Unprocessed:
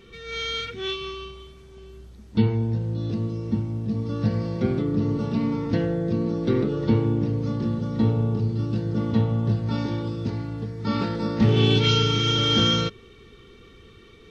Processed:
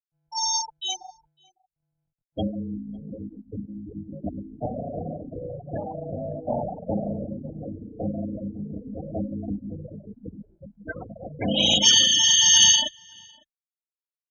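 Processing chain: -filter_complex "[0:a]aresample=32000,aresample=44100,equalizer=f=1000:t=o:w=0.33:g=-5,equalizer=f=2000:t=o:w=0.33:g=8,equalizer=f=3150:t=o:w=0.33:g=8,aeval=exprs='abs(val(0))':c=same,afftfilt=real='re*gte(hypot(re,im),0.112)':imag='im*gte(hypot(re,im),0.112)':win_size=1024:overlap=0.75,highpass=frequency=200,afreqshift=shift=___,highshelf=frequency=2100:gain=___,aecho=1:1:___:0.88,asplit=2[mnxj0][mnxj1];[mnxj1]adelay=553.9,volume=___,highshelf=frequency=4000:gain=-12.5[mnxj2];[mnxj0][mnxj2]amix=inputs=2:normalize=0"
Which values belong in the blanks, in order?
-21, 4, 1.3, -26dB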